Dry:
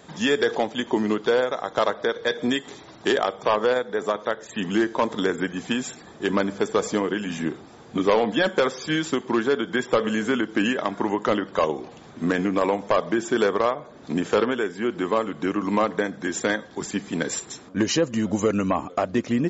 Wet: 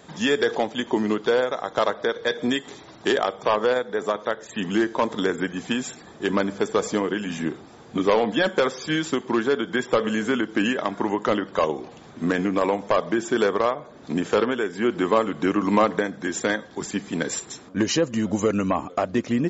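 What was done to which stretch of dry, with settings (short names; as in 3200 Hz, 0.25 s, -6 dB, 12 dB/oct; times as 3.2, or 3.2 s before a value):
14.73–15.99 gain +3 dB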